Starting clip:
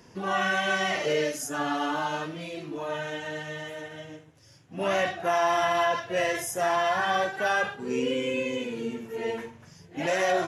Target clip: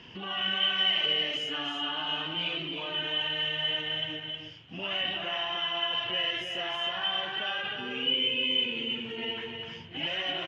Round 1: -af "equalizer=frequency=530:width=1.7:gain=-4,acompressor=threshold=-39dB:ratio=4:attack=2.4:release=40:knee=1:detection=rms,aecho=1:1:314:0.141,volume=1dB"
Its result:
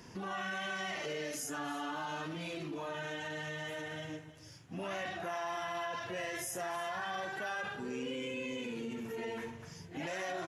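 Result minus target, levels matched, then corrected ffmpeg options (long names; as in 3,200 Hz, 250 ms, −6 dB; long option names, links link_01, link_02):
4,000 Hz band −10.5 dB; echo-to-direct −11.5 dB
-af "equalizer=frequency=530:width=1.7:gain=-4,acompressor=threshold=-39dB:ratio=4:attack=2.4:release=40:knee=1:detection=rms,lowpass=frequency=3000:width_type=q:width=14,aecho=1:1:314:0.531,volume=1dB"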